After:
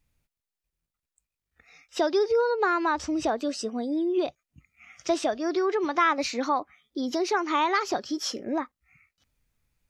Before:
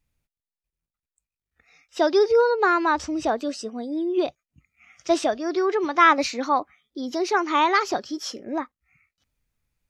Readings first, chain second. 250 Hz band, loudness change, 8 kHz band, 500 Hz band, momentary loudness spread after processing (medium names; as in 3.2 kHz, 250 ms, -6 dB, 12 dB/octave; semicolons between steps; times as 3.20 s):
-2.0 dB, -4.0 dB, -1.0 dB, -4.0 dB, 8 LU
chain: compression 2:1, threshold -29 dBFS, peak gain reduction 10 dB; trim +2.5 dB